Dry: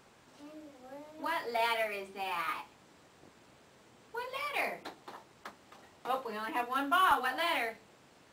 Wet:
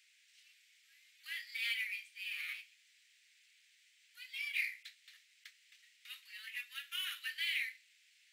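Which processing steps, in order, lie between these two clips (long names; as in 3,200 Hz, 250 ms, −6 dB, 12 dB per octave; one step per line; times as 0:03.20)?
Butterworth high-pass 2,000 Hz 48 dB per octave
high-shelf EQ 2,700 Hz −7.5 dB
level +4 dB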